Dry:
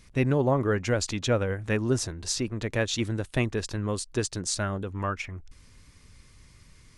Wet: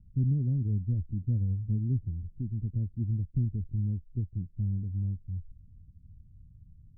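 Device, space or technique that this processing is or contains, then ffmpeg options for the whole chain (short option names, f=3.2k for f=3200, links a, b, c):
the neighbour's flat through the wall: -af "lowpass=f=200:w=0.5412,lowpass=f=200:w=1.3066,equalizer=f=86:t=o:w=0.67:g=5"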